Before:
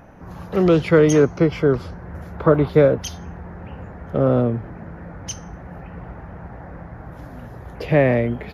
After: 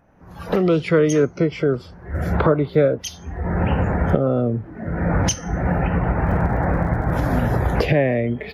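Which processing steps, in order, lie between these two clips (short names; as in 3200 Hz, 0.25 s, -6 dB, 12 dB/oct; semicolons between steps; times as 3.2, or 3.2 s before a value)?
recorder AGC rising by 28 dB/s; spectral noise reduction 11 dB; 6.24–7.37 crackle 74/s -34 dBFS; gain -2.5 dB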